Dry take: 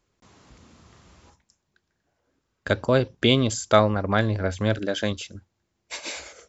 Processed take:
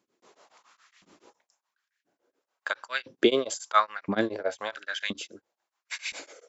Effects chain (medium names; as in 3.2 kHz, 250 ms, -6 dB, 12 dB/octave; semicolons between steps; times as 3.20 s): LFO high-pass saw up 0.98 Hz 220–2400 Hz; tremolo of two beating tones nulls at 7.1 Hz; trim -2 dB